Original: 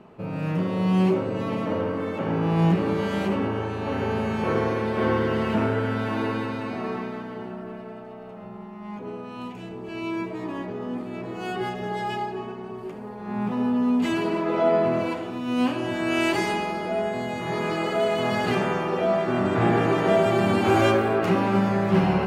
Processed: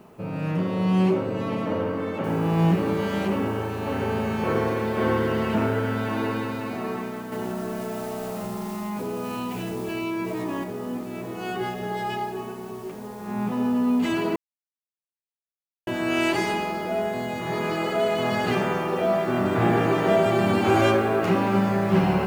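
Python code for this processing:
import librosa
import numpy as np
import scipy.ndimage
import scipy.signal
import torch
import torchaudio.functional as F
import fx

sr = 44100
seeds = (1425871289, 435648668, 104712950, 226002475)

y = fx.noise_floor_step(x, sr, seeds[0], at_s=2.24, before_db=-69, after_db=-54, tilt_db=0.0)
y = fx.env_flatten(y, sr, amount_pct=70, at=(7.32, 10.64))
y = fx.edit(y, sr, fx.silence(start_s=14.36, length_s=1.51), tone=tone)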